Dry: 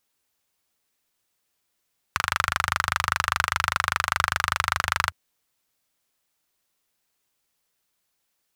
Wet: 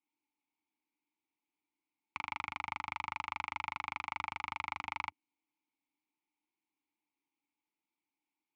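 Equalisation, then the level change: vowel filter u; +3.0 dB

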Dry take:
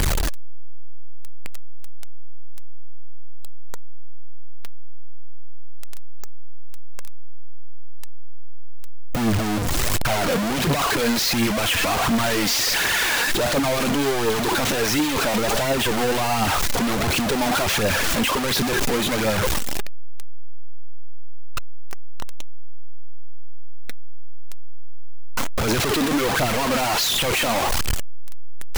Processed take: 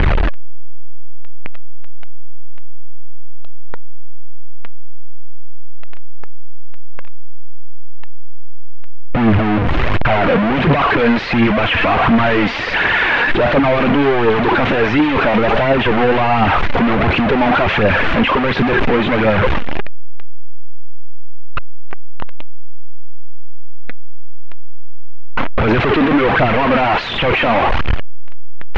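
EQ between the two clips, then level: low-pass 2.7 kHz 24 dB/octave; +8.5 dB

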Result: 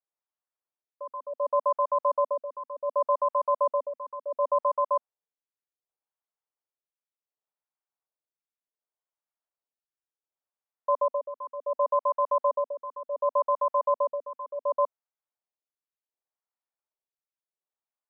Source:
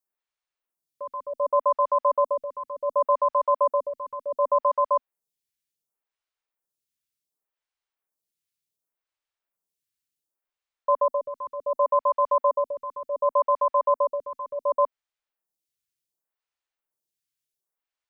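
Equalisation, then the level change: high-pass 540 Hz 12 dB/octave; low-pass 1 kHz 12 dB/octave; 0.0 dB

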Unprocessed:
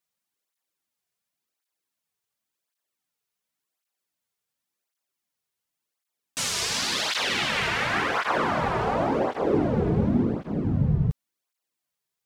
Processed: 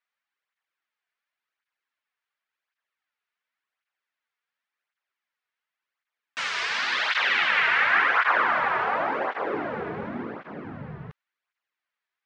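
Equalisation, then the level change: band-pass filter 1.7 kHz, Q 1.5; distance through air 99 m; +8.5 dB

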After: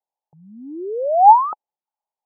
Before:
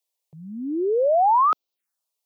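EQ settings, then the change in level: resonant low-pass 850 Hz, resonance Q 9.3; -7.0 dB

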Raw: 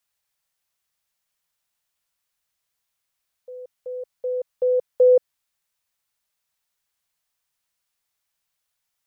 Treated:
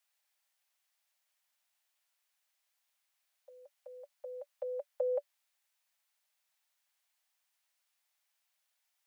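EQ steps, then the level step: rippled Chebyshev high-pass 560 Hz, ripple 3 dB; 0.0 dB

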